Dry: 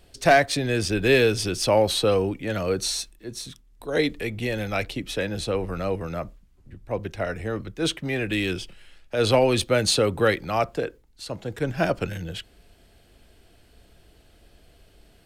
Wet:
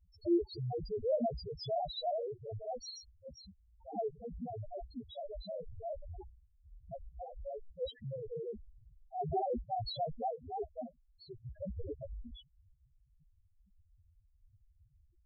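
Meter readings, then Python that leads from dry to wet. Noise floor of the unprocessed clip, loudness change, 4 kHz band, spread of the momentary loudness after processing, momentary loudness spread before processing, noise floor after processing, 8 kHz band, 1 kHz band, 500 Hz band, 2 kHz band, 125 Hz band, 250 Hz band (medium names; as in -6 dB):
-57 dBFS, -15.5 dB, -20.0 dB, 17 LU, 15 LU, -70 dBFS, under -25 dB, -11.5 dB, -15.0 dB, under -40 dB, -16.5 dB, -14.5 dB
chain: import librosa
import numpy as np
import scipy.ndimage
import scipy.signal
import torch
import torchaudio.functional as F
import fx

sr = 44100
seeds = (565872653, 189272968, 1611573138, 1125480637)

y = fx.cycle_switch(x, sr, every=2, mode='inverted')
y = fx.spec_topn(y, sr, count=1)
y = y * librosa.db_to_amplitude(-2.5)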